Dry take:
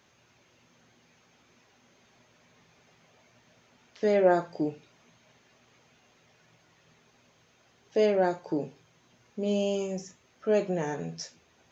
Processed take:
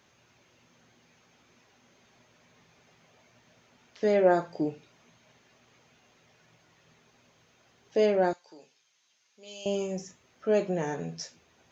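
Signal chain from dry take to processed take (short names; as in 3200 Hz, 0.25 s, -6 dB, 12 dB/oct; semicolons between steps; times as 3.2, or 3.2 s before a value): 8.33–9.66 band-pass 5400 Hz, Q 0.82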